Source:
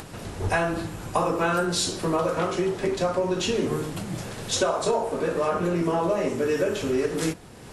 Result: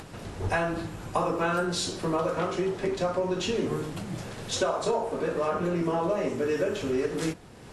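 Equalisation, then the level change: treble shelf 9.1 kHz -8.5 dB; -3.0 dB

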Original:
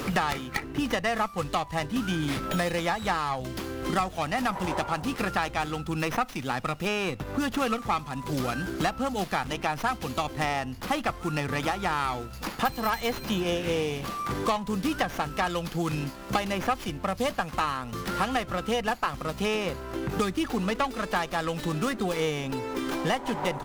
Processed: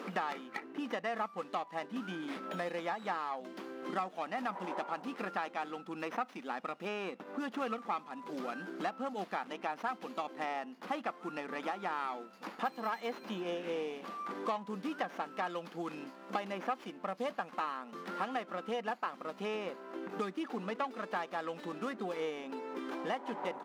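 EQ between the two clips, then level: brick-wall FIR high-pass 170 Hz; low-pass 1.4 kHz 6 dB/octave; bass shelf 260 Hz -9 dB; -6.0 dB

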